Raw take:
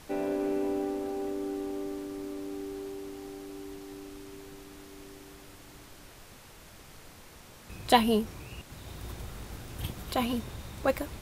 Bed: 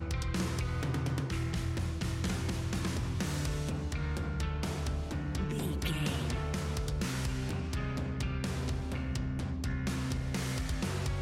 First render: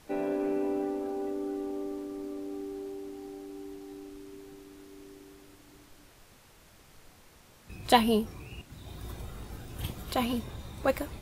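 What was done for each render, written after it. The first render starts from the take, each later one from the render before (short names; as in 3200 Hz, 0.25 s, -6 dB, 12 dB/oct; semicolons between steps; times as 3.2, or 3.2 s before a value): noise print and reduce 6 dB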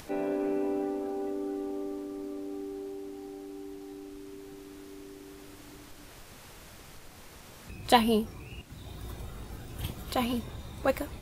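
upward compressor, threshold -40 dBFS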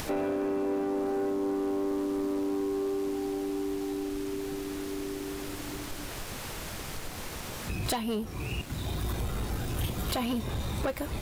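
compressor 16:1, threshold -35 dBFS, peak gain reduction 21 dB; sample leveller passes 3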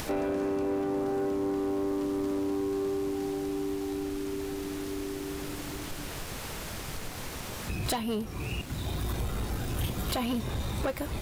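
add bed -14.5 dB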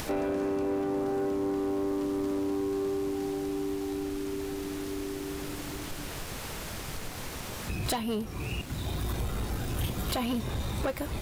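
nothing audible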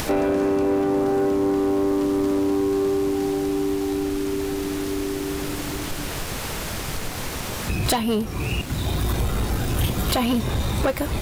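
gain +9 dB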